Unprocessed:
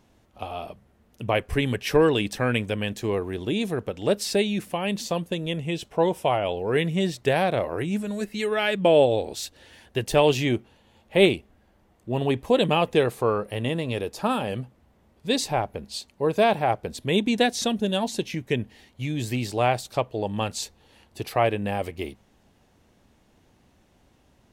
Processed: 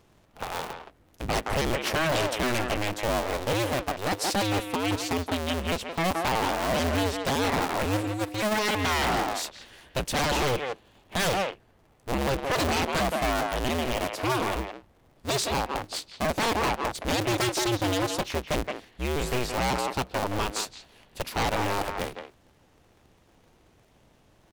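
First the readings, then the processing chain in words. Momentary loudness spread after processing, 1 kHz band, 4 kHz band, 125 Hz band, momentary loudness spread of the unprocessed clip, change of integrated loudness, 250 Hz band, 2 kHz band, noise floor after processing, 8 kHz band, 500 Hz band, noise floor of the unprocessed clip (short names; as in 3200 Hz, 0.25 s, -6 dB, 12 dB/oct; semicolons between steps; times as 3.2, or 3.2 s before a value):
10 LU, +0.5 dB, 0.0 dB, -3.0 dB, 13 LU, -2.5 dB, -4.0 dB, +1.0 dB, -61 dBFS, +3.0 dB, -6.0 dB, -62 dBFS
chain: cycle switcher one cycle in 2, inverted; speakerphone echo 0.17 s, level -7 dB; wavefolder -20 dBFS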